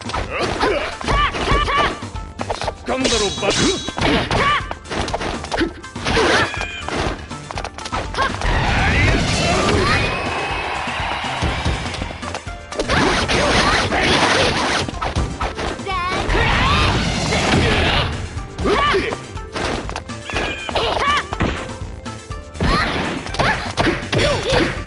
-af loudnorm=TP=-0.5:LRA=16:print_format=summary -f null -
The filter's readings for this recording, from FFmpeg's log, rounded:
Input Integrated:    -18.7 LUFS
Input True Peak:      -3.0 dBTP
Input LRA:             4.2 LU
Input Threshold:     -28.9 LUFS